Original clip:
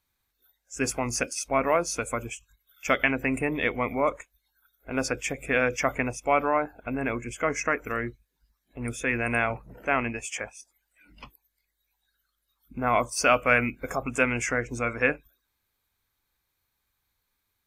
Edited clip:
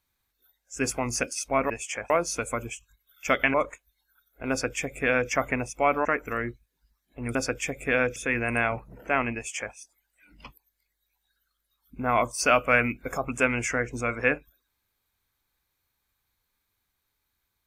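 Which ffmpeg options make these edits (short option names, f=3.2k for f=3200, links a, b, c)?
-filter_complex "[0:a]asplit=7[a][b][c][d][e][f][g];[a]atrim=end=1.702[h];[b]atrim=start=10.128:end=10.532[i];[c]atrim=start=1.698:end=3.142[j];[d]atrim=start=4.008:end=6.522[k];[e]atrim=start=7.638:end=8.942[l];[f]atrim=start=4.968:end=5.782[m];[g]atrim=start=8.938[n];[h][i]acrossfade=d=0.004:c1=hsin:c2=hsin[o];[o][j]acrossfade=d=0.004:c1=hsin:c2=hsin[p];[p][k]acrossfade=d=0.004:c1=hsin:c2=hsin[q];[q][l]acrossfade=d=0.004:c1=hsin:c2=hsin[r];[r][m]acrossfade=d=0.004:c1=hsin:c2=hsin[s];[s][n]acrossfade=d=0.004:c1=hsin:c2=hsin"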